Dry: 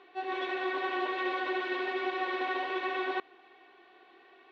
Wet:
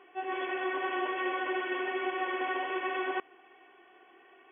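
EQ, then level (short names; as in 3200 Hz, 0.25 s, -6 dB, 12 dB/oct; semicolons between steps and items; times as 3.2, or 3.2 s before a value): brick-wall FIR low-pass 3400 Hz; 0.0 dB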